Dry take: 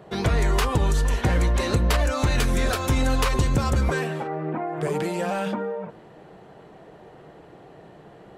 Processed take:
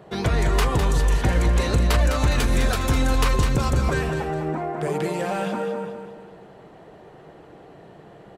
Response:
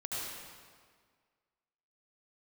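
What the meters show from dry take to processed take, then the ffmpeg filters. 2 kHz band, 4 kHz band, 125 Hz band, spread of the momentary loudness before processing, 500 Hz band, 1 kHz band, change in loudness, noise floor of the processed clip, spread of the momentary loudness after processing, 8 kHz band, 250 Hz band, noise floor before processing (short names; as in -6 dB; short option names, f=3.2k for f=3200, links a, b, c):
+1.0 dB, +1.0 dB, +1.5 dB, 7 LU, +1.0 dB, +1.0 dB, +1.5 dB, -47 dBFS, 7 LU, +1.0 dB, +1.0 dB, -48 dBFS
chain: -af "aecho=1:1:205|410|615|820|1025:0.422|0.177|0.0744|0.0312|0.0131"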